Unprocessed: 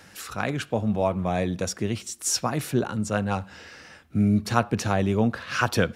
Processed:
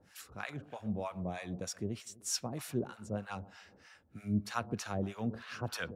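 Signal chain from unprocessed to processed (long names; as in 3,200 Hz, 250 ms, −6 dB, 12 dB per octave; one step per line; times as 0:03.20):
delay with a low-pass on its return 126 ms, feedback 50%, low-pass 2,600 Hz, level −17 dB
two-band tremolo in antiphase 3.2 Hz, depth 100%, crossover 760 Hz
level −9 dB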